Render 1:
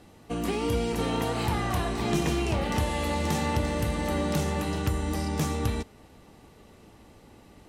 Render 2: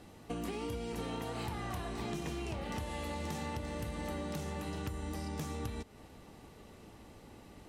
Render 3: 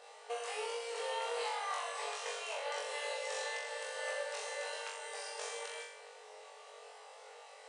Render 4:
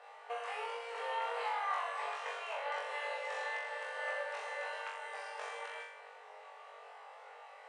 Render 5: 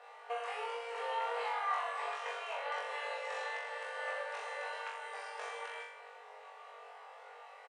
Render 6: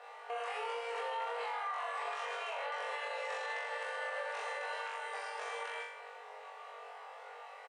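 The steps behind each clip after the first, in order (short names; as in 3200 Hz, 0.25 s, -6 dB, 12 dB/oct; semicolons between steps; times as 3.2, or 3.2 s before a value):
compressor 6:1, threshold -35 dBFS, peak gain reduction 13.5 dB; gain -1.5 dB
FFT band-pass 420–10000 Hz; flutter echo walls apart 3.6 m, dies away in 0.72 s; gain +1 dB
three-band isolator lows -21 dB, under 580 Hz, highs -19 dB, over 2500 Hz; gain +4.5 dB
comb 4.2 ms, depth 31%
limiter -33.5 dBFS, peak gain reduction 10 dB; gain +3 dB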